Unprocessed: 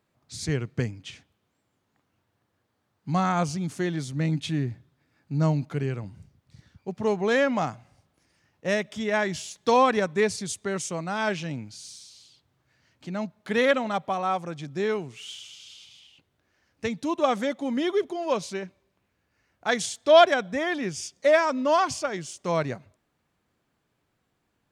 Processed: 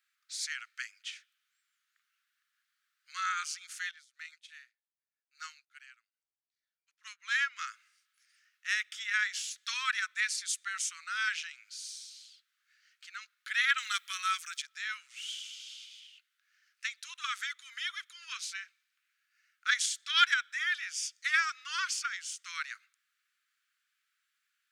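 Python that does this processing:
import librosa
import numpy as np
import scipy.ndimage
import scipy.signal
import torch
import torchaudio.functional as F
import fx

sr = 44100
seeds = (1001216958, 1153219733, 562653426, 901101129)

y = fx.upward_expand(x, sr, threshold_db=-39.0, expansion=2.5, at=(3.91, 7.59))
y = fx.tilt_eq(y, sr, slope=4.5, at=(13.78, 14.62))
y = scipy.signal.sosfilt(scipy.signal.butter(12, 1300.0, 'highpass', fs=sr, output='sos'), y)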